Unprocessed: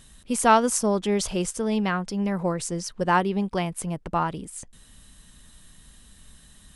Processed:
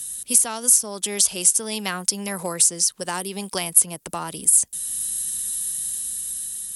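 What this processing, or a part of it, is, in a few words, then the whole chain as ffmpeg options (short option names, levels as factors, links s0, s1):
FM broadcast chain: -filter_complex "[0:a]highpass=65,dynaudnorm=f=590:g=5:m=1.88,acrossover=split=210|570|5400[s0][s1][s2][s3];[s0]acompressor=threshold=0.0112:ratio=4[s4];[s1]acompressor=threshold=0.0447:ratio=4[s5];[s2]acompressor=threshold=0.0631:ratio=4[s6];[s3]acompressor=threshold=0.0158:ratio=4[s7];[s4][s5][s6][s7]amix=inputs=4:normalize=0,aemphasis=mode=production:type=75fm,alimiter=limit=0.2:level=0:latency=1:release=497,asoftclip=type=hard:threshold=0.178,lowpass=f=15000:w=0.5412,lowpass=f=15000:w=1.3066,aemphasis=mode=production:type=75fm,volume=0.841"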